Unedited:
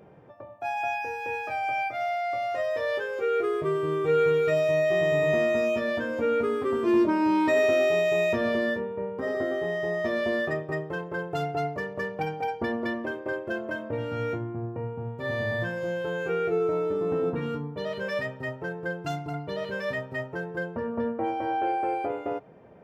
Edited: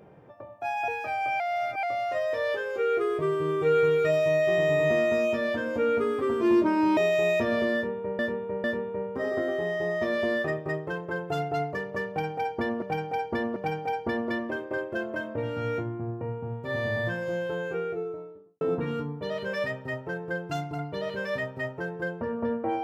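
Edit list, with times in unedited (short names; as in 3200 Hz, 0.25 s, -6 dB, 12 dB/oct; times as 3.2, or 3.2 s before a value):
0.88–1.31 cut
1.83–2.26 reverse
7.4–7.9 cut
8.67–9.12 loop, 3 plays
12.11–12.85 loop, 3 plays
15.88–17.16 studio fade out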